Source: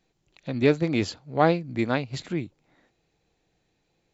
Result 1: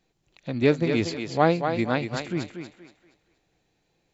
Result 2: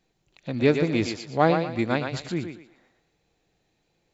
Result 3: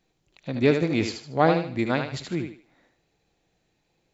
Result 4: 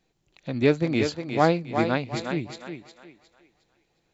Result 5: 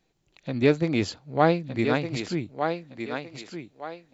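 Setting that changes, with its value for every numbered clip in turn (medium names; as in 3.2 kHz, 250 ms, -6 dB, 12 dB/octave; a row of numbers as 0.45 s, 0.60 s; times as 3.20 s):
thinning echo, time: 236 ms, 118 ms, 76 ms, 359 ms, 1213 ms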